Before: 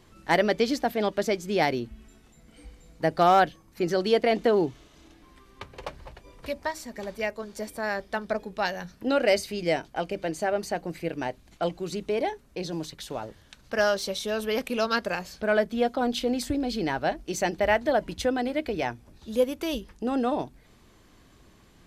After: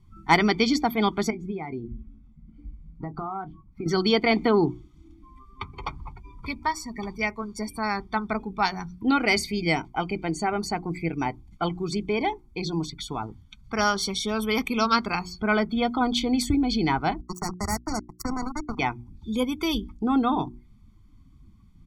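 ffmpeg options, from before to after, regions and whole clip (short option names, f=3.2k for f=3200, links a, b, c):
-filter_complex "[0:a]asettb=1/sr,asplit=3[a][b][c];[a]atrim=end=1.304[d];[b]atrim=start=1.3:end=3.86,asetpts=PTS-STARTPTS,afade=t=in:d=0.004:c=qsin,afade=t=out:st=2.556:d=0.004:c=qsin,acompressor=threshold=-31dB:ratio=10:attack=3.2:release=140:knee=1:detection=peak,lowpass=f=1.3k:p=1,asplit=2[e][f];[f]adelay=26,volume=-11.5dB[g];[e][g]amix=inputs=2:normalize=0,atrim=end_sample=112896[h];[c]atrim=start=3.856[i];[d][h]acrossfade=d=0.004:c1=hsin:c2=qsin[j];[j][i]acrossfade=d=0.004:c1=qsin:c2=hsin,asettb=1/sr,asplit=3[k][l][m];[k]atrim=end=17.214[n];[l]atrim=start=17.21:end=18.79,asetpts=PTS-STARTPTS,afade=t=in:d=0.004:c=qsin,afade=t=out:st=1.576:d=0.004:c=qsin,acrusher=bits=3:mix=0:aa=0.5,acrossover=split=240|3000[o][p][q];[p]acompressor=threshold=-37dB:ratio=2:attack=3.2:release=140:knee=2.83:detection=peak[r];[o][r][q]amix=inputs=3:normalize=0,asuperstop=centerf=3000:order=4:qfactor=0.88[s];[m]atrim=start=18.786[t];[n][s]acrossfade=d=0.004:c1=hsin:c2=qsin[u];[u][t]acrossfade=d=0.004:c1=qsin:c2=hsin,aecho=1:1:0.9:0.92,afftdn=nr=20:nf=-43,bandreject=f=60:t=h:w=6,bandreject=f=120:t=h:w=6,bandreject=f=180:t=h:w=6,bandreject=f=240:t=h:w=6,bandreject=f=300:t=h:w=6,bandreject=f=360:t=h:w=6,volume=3dB"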